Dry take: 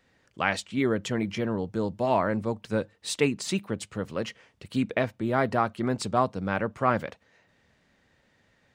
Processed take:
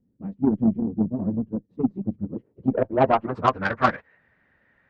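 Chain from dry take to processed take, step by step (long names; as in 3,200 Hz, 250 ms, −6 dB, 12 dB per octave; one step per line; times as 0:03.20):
low-pass filter sweep 240 Hz → 1,800 Hz, 0:03.97–0:06.49
time stretch by phase vocoder 0.56×
harmonic generator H 3 −21 dB, 7 −28 dB, 8 −43 dB, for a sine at −11 dBFS
level +8.5 dB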